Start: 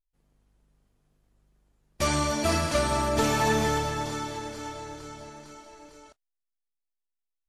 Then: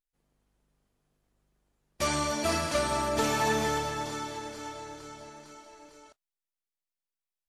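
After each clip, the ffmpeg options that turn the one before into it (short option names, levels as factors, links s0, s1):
-af "lowshelf=f=170:g=-7.5,volume=0.794"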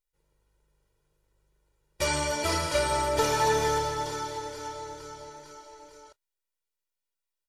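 -af "aecho=1:1:2.1:0.78"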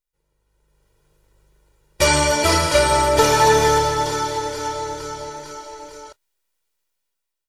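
-af "dynaudnorm=f=220:g=7:m=4.22"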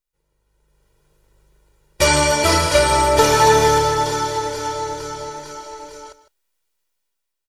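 -af "aecho=1:1:155:0.178,volume=1.12"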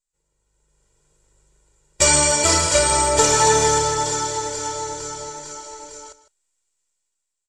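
-af "lowpass=f=7600:t=q:w=7.5,volume=0.631"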